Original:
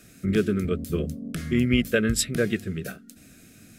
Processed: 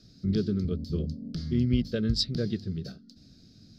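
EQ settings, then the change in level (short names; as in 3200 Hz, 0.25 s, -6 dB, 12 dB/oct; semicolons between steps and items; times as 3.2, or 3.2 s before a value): EQ curve 130 Hz 0 dB, 2500 Hz -20 dB, 4700 Hz +8 dB, 8300 Hz -28 dB; 0.0 dB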